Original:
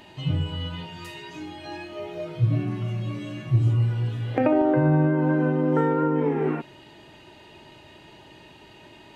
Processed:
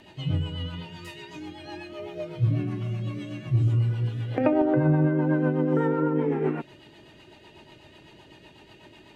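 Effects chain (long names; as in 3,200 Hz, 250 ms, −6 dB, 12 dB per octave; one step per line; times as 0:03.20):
rotating-speaker cabinet horn 8 Hz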